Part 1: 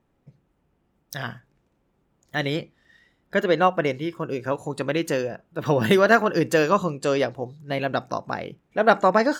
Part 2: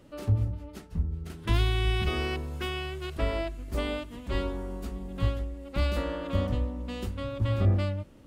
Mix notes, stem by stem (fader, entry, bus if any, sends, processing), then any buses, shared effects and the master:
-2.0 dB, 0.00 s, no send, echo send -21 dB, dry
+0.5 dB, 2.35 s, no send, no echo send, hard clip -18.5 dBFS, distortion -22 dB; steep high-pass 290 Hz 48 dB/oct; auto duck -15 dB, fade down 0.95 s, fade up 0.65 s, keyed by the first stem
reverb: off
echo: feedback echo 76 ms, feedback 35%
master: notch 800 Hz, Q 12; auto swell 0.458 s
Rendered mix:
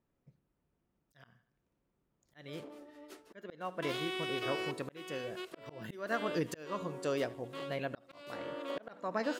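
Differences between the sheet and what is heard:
stem 1 -2.0 dB -> -12.0 dB; stem 2 +0.5 dB -> +10.0 dB

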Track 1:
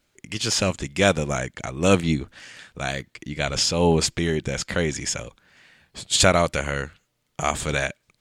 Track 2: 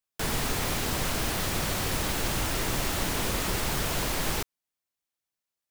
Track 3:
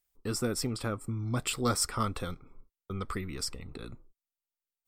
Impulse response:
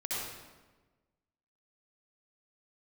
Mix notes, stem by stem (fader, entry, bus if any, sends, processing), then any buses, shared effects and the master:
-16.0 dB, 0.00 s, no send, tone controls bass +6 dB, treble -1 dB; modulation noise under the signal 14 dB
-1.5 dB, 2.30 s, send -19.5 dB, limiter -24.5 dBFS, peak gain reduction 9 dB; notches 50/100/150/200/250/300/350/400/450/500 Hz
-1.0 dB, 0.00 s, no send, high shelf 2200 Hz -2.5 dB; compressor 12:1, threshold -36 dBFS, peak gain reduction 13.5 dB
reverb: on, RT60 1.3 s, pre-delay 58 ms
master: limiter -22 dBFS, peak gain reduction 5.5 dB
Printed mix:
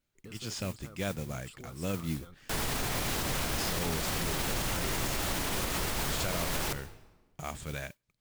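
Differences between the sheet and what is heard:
stem 2: missing limiter -24.5 dBFS, peak gain reduction 9 dB; stem 3 -1.0 dB -> -10.0 dB

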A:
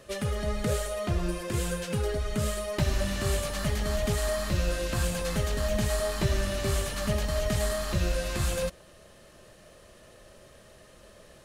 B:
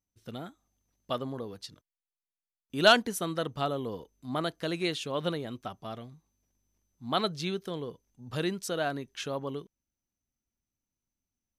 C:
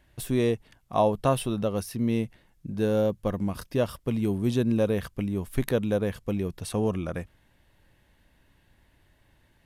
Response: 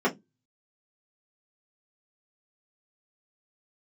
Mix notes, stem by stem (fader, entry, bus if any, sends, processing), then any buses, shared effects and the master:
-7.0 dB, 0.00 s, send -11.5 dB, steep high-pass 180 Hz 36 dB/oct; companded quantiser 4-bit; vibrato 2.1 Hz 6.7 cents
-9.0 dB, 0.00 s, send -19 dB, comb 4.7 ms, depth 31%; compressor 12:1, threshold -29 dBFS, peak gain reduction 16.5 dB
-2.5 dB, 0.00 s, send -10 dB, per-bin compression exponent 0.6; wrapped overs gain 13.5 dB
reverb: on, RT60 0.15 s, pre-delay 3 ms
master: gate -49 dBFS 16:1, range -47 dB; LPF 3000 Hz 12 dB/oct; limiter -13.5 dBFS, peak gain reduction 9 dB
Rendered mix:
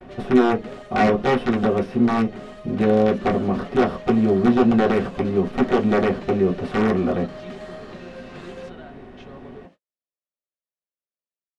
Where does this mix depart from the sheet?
stem A: send off; master: missing limiter -13.5 dBFS, peak gain reduction 9 dB

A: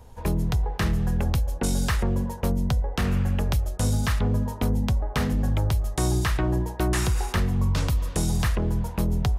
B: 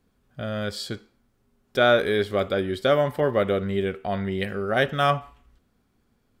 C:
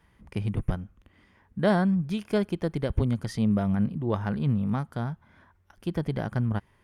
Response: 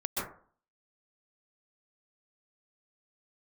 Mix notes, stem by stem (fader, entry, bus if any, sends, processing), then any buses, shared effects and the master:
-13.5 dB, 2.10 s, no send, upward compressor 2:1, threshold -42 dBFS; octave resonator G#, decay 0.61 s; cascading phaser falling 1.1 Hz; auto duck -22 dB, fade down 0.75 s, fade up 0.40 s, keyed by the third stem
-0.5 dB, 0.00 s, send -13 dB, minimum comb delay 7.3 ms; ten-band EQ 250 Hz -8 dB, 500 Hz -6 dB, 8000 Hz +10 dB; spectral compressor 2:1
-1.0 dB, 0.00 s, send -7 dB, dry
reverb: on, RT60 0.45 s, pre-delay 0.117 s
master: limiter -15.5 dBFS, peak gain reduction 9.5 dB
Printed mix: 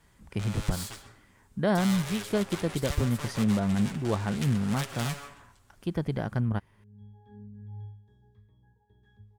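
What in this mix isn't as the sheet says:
stem B -0.5 dB -> -12.5 dB; stem C: send off

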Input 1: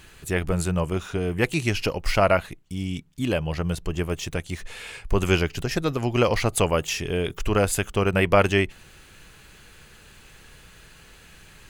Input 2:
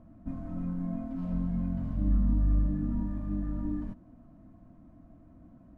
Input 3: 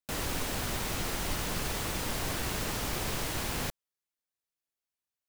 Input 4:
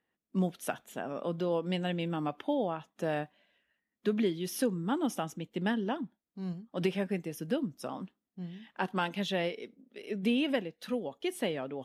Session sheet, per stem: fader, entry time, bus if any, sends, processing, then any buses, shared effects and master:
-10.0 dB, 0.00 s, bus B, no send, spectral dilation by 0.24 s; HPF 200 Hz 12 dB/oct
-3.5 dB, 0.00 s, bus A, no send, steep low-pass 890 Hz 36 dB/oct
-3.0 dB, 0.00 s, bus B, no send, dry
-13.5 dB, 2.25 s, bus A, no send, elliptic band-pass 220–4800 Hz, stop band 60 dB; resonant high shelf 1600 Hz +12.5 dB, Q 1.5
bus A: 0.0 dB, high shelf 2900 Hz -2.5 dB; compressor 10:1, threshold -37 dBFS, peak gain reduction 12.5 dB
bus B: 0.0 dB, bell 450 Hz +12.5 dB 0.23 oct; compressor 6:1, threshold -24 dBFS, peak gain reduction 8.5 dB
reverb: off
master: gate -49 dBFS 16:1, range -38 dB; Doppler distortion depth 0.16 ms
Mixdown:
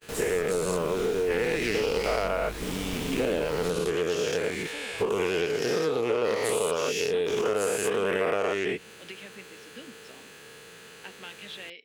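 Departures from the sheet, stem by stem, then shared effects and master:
stem 1 -10.0 dB -> -3.0 dB; stem 2 -3.5 dB -> -10.0 dB

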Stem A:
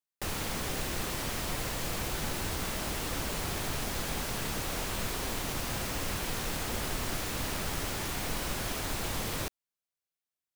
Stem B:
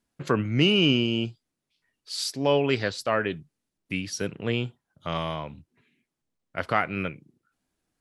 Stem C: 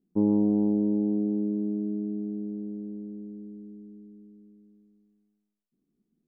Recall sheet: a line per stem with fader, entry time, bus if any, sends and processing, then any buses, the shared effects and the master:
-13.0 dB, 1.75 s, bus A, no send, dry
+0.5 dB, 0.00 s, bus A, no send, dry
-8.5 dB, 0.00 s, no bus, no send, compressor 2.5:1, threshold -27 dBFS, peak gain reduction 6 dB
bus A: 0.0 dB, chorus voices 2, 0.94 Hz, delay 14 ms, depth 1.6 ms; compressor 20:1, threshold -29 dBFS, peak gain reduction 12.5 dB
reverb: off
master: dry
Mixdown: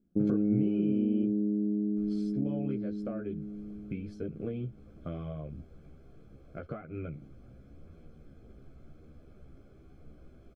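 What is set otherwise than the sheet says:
stem B +0.5 dB -> +7.0 dB; stem C -8.5 dB -> +2.0 dB; master: extra running mean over 47 samples

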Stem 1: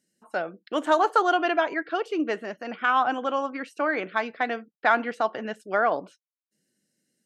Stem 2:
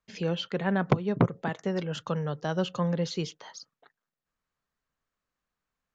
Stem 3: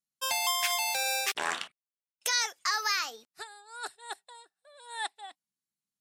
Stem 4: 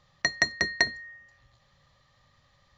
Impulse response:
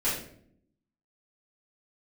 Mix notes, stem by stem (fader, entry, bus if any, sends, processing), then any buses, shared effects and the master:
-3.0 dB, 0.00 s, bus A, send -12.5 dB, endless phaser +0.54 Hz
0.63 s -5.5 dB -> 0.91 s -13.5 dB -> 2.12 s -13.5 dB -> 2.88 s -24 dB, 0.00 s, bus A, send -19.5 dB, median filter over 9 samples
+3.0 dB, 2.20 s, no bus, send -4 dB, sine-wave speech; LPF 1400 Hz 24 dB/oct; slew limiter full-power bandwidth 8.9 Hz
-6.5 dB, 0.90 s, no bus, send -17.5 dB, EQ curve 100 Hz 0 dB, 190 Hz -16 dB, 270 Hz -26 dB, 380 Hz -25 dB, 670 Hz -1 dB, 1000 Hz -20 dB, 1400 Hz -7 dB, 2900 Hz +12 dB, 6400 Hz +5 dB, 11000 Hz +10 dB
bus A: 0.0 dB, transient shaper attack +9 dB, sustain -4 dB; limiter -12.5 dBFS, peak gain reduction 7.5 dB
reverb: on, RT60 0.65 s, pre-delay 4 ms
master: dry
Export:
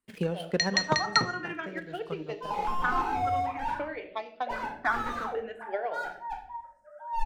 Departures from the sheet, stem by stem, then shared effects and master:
stem 1 -3.0 dB -> -12.0 dB; stem 4: entry 0.90 s -> 0.35 s

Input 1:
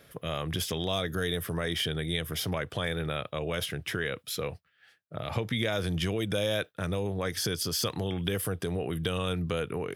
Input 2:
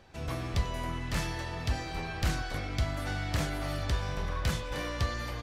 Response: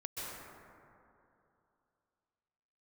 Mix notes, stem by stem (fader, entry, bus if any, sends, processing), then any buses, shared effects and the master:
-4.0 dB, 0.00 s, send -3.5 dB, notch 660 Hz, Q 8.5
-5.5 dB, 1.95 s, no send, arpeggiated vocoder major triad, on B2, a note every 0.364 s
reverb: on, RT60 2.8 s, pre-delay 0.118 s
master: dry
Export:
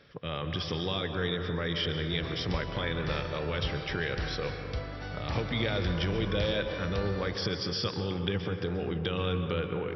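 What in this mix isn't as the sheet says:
stem 2: missing arpeggiated vocoder major triad, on B2, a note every 0.364 s; master: extra brick-wall FIR low-pass 5800 Hz

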